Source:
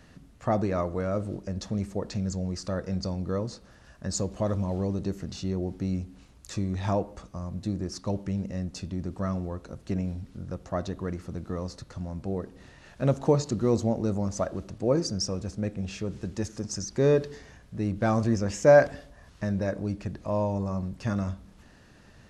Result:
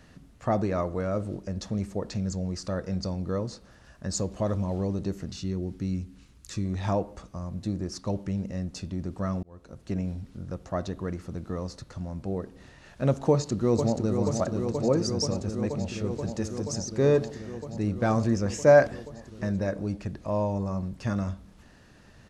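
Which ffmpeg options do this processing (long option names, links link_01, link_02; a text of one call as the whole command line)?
ffmpeg -i in.wav -filter_complex "[0:a]asettb=1/sr,asplit=3[link_01][link_02][link_03];[link_01]atrim=end=5.314[link_04];[link_02]atrim=start=5.31:end=6.65,asetpts=PTS-STARTPTS,afade=type=in:duration=0.004:curve=qsin,afade=type=out:start_time=1.336:duration=0.004:curve=qsin,equalizer=frequency=690:width_type=o:width=1.1:gain=-9.5[link_05];[link_03]atrim=start=6.646[link_06];[link_04][link_05]acrossfade=duration=0.004:curve1=hsin:curve2=qsin[link_07];[link_07][link_06]acrossfade=duration=0.004:curve1=qsin:curve2=hsin,asplit=2[link_08][link_09];[link_09]afade=type=in:start_time=13.3:duration=0.01,afade=type=out:start_time=14.21:duration=0.01,aecho=0:1:480|960|1440|1920|2400|2880|3360|3840|4320|4800|5280|5760:0.501187|0.426009|0.362108|0.307792|0.261623|0.222379|0.189023|0.160669|0.136569|0.116083|0.0986709|0.0838703[link_10];[link_08][link_10]amix=inputs=2:normalize=0,asplit=2[link_11][link_12];[link_11]atrim=end=9.43,asetpts=PTS-STARTPTS,afade=type=out:start_time=9.426:duration=0.004:curve=hsin[link_13];[link_12]atrim=start=9.43,asetpts=PTS-STARTPTS,afade=type=in:duration=0.71:curve=qsin[link_14];[link_13][link_14]concat=n=2:v=0:a=1" out.wav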